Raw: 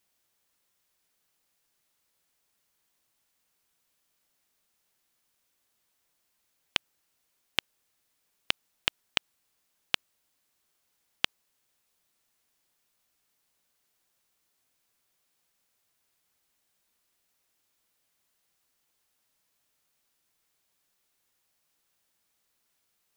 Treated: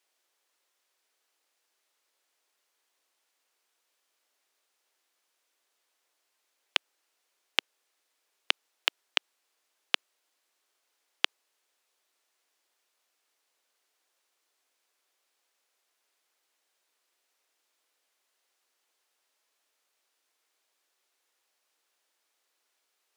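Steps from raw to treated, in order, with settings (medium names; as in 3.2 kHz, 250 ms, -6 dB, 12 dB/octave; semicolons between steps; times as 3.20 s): high-pass 340 Hz 24 dB/octave; treble shelf 11 kHz -12 dB; trim +2 dB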